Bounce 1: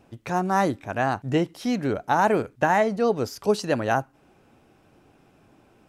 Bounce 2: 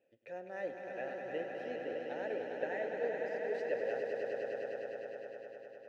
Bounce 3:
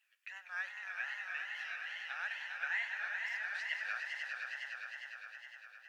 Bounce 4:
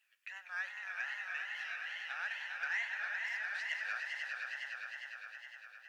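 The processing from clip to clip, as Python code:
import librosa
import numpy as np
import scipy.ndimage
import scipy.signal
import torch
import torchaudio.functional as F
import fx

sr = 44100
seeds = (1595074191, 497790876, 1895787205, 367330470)

y1 = fx.vowel_filter(x, sr, vowel='e')
y1 = fx.echo_swell(y1, sr, ms=102, loudest=5, wet_db=-6.5)
y1 = y1 * 10.0 ** (-7.5 / 20.0)
y2 = scipy.signal.sosfilt(scipy.signal.ellip(4, 1.0, 60, 1100.0, 'highpass', fs=sr, output='sos'), y1)
y2 = fx.wow_flutter(y2, sr, seeds[0], rate_hz=2.1, depth_cents=130.0)
y2 = y2 * 10.0 ** (10.0 / 20.0)
y3 = 10.0 ** (-28.0 / 20.0) * np.tanh(y2 / 10.0 ** (-28.0 / 20.0))
y3 = y3 * 10.0 ** (1.0 / 20.0)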